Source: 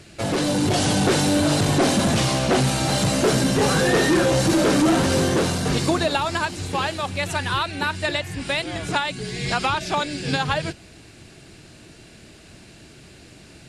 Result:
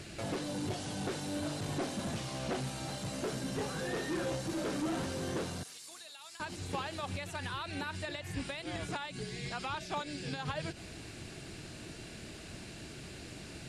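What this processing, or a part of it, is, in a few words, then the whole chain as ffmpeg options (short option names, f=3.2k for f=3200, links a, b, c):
de-esser from a sidechain: -filter_complex "[0:a]asplit=2[a][b];[b]highpass=4.2k,apad=whole_len=603512[c];[a][c]sidechaincompress=threshold=-48dB:ratio=4:attack=0.55:release=86,asettb=1/sr,asplit=3[d][e][f];[d]atrim=end=5.634[g];[e]atrim=start=5.63:end=6.4,asetpts=PTS-STARTPTS,afade=t=in:d=0.004:c=qsin,afade=t=out:st=0.766:d=0.004:c=qsin,aderivative[h];[f]atrim=start=6.396[i];[g][h]acrossfade=d=0.004:c1=hsin:c2=qsin[j];[j][i]acrossfade=d=0.004:c1=qsin:c2=hsin"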